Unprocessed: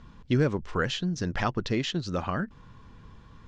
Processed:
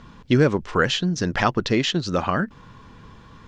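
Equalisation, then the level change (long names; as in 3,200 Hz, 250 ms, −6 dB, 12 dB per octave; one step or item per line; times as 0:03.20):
low-shelf EQ 110 Hz −9 dB
+8.5 dB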